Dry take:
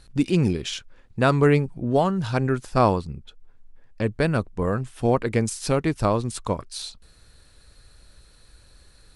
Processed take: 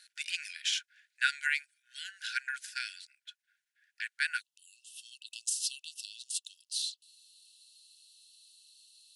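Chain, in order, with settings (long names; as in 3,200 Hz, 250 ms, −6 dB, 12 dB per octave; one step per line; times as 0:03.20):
linear-phase brick-wall high-pass 1,400 Hz, from 0:04.40 2,600 Hz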